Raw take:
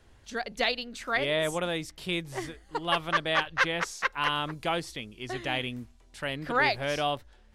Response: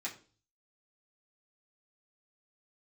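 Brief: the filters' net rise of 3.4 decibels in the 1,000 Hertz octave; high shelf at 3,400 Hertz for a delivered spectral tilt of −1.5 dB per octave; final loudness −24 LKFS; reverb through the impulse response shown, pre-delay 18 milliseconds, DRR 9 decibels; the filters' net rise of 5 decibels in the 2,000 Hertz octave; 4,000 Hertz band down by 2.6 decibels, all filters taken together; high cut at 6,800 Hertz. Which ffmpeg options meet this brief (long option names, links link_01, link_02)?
-filter_complex "[0:a]lowpass=6800,equalizer=frequency=1000:width_type=o:gain=3,equalizer=frequency=2000:width_type=o:gain=7.5,highshelf=frequency=3400:gain=-5,equalizer=frequency=4000:width_type=o:gain=-4,asplit=2[link_01][link_02];[1:a]atrim=start_sample=2205,adelay=18[link_03];[link_02][link_03]afir=irnorm=-1:irlink=0,volume=-10dB[link_04];[link_01][link_04]amix=inputs=2:normalize=0,volume=2dB"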